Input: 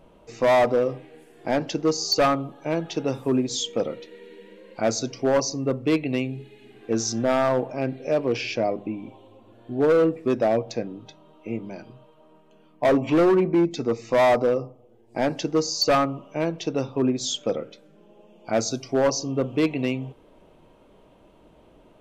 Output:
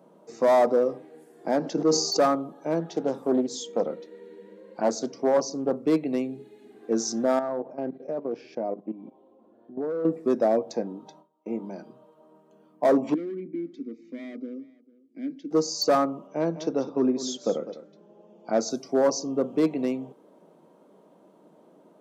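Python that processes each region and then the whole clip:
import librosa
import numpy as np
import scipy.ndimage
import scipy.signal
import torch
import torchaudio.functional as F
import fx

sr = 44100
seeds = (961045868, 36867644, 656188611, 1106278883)

y = fx.chain(x, sr, fx.high_shelf(hz=7700.0, db=-9.5),
    fx.sustainer(db_per_s=44.0), at=(1.61, 2.17))
y = fx.chain(y, sr, fx.high_shelf(hz=5100.0, db=-5.5),
    fx.doppler_dist(depth_ms=0.35), at=(2.79, 5.76))
y = fx.chain(y, sr, fx.lowpass(hz=1500.0, slope=6),
    fx.level_steps(step_db=14),
    fx.doppler_dist(depth_ms=0.14), at=(7.39, 10.05))
y = fx.chain(y, sr, fx.gate_hold(open_db=-40.0, close_db=-44.0, hold_ms=71.0, range_db=-21, attack_ms=1.4, release_ms=100.0),
    fx.peak_eq(hz=880.0, db=10.0, octaves=0.31), at=(10.73, 11.71))
y = fx.chain(y, sr, fx.vowel_filter(vowel='i'),
    fx.echo_single(ms=447, db=-22.5), at=(13.14, 15.51))
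y = fx.chain(y, sr, fx.lowpass(hz=6600.0, slope=24),
    fx.echo_single(ms=202, db=-13.0), at=(16.27, 18.7))
y = scipy.signal.sosfilt(scipy.signal.cheby1(4, 1.0, 170.0, 'highpass', fs=sr, output='sos'), y)
y = fx.peak_eq(y, sr, hz=2700.0, db=-13.0, octaves=1.0)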